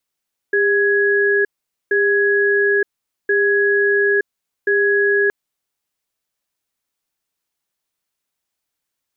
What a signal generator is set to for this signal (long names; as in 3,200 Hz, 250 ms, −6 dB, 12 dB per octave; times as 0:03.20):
tone pair in a cadence 403 Hz, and 1,670 Hz, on 0.92 s, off 0.46 s, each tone −15.5 dBFS 4.77 s